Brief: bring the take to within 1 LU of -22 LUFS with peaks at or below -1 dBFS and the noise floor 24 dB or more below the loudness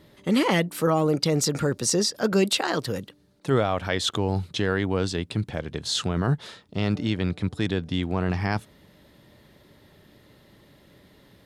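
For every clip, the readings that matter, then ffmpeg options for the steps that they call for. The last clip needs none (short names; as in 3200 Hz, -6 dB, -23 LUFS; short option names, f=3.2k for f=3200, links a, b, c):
loudness -25.5 LUFS; peak -9.5 dBFS; loudness target -22.0 LUFS
-> -af "volume=3.5dB"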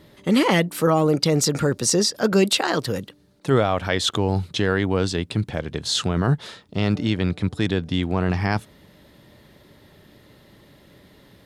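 loudness -22.0 LUFS; peak -6.0 dBFS; noise floor -53 dBFS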